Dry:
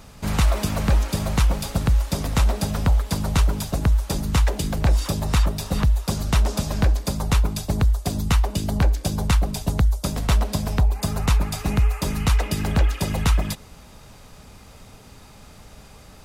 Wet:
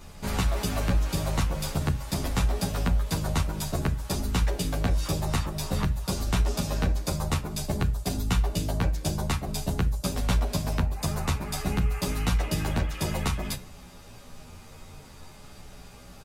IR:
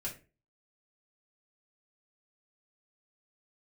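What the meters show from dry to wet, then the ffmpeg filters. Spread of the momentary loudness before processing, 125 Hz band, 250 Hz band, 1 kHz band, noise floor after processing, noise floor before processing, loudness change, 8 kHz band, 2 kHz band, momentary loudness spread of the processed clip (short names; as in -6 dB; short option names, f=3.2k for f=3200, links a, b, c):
3 LU, -6.0 dB, -4.5 dB, -4.0 dB, -47 dBFS, -46 dBFS, -6.0 dB, -3.5 dB, -4.0 dB, 21 LU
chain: -filter_complex "[0:a]acompressor=threshold=-19dB:ratio=6,asplit=2[a][b];[1:a]atrim=start_sample=2205[c];[b][c]afir=irnorm=-1:irlink=0,volume=-5dB[d];[a][d]amix=inputs=2:normalize=0,asplit=2[e][f];[f]adelay=11.2,afreqshift=-0.53[g];[e][g]amix=inputs=2:normalize=1,volume=-1.5dB"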